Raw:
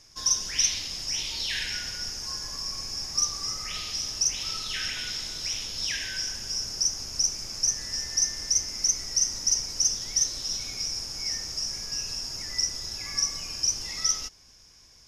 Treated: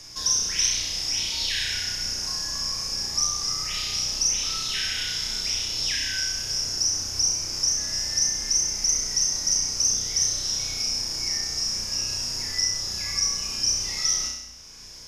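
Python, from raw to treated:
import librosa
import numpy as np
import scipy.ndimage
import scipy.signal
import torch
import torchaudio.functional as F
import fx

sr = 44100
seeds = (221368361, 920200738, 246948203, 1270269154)

y = fx.room_flutter(x, sr, wall_m=5.6, rt60_s=0.73)
y = fx.band_squash(y, sr, depth_pct=40)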